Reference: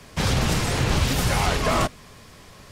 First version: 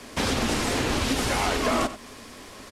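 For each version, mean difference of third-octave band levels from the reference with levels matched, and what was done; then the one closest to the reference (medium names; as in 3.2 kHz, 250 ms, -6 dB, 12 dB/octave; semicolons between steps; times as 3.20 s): 4.0 dB: CVSD coder 64 kbps; resonant low shelf 200 Hz -6 dB, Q 3; compression 2:1, threshold -29 dBFS, peak gain reduction 6.5 dB; delay 91 ms -13.5 dB; trim +3.5 dB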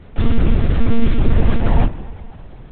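13.0 dB: frequency shift -350 Hz; spring tank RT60 2.6 s, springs 50/55 ms, chirp 75 ms, DRR 14 dB; monotone LPC vocoder at 8 kHz 230 Hz; tilt EQ -2.5 dB/octave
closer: first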